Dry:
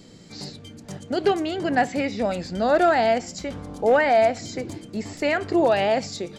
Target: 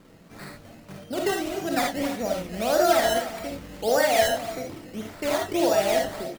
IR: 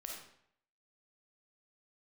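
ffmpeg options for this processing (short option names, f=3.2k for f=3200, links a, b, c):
-filter_complex "[0:a]aecho=1:1:290:0.211,acrusher=samples=13:mix=1:aa=0.000001:lfo=1:lforange=13:lforate=1.7[a];[1:a]atrim=start_sample=2205,atrim=end_sample=3969[b];[a][b]afir=irnorm=-1:irlink=0"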